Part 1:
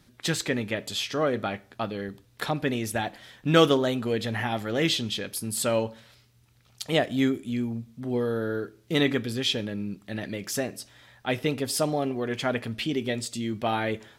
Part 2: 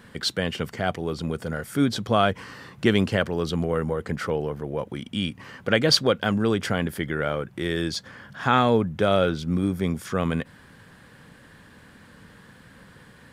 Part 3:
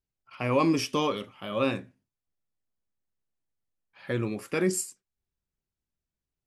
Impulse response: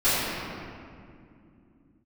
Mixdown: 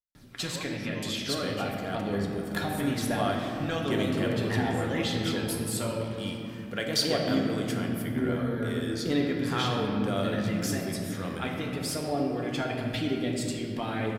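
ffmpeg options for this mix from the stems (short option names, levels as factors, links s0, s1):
-filter_complex "[0:a]acompressor=threshold=0.0141:ratio=3,aphaser=in_gain=1:out_gain=1:delay=1.4:decay=0.39:speed=1:type=triangular,adelay=150,volume=1.06,asplit=2[s0][s1];[s1]volume=0.158[s2];[1:a]aemphasis=mode=production:type=50kf,adelay=1050,volume=0.2,asplit=2[s3][s4];[s4]volume=0.133[s5];[2:a]volume=0.112[s6];[3:a]atrim=start_sample=2205[s7];[s2][s5]amix=inputs=2:normalize=0[s8];[s8][s7]afir=irnorm=-1:irlink=0[s9];[s0][s3][s6][s9]amix=inputs=4:normalize=0"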